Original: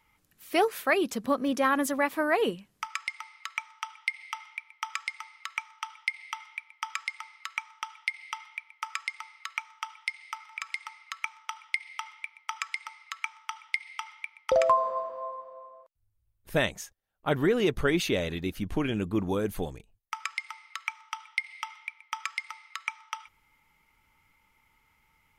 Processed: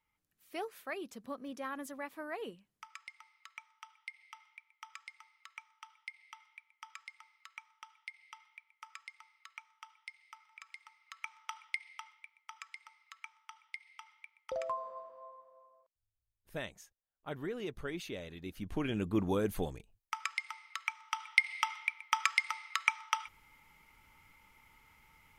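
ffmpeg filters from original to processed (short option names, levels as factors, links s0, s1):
-af "volume=4.73,afade=t=in:st=11:d=0.54:silence=0.298538,afade=t=out:st=11.54:d=0.67:silence=0.334965,afade=t=in:st=18.35:d=0.84:silence=0.251189,afade=t=in:st=21:d=0.4:silence=0.446684"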